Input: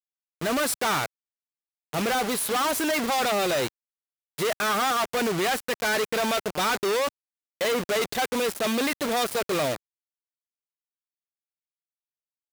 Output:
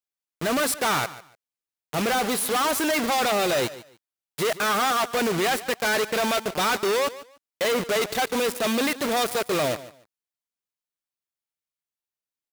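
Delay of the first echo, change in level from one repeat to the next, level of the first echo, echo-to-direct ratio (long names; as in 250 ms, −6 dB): 146 ms, −13.5 dB, −16.5 dB, −16.5 dB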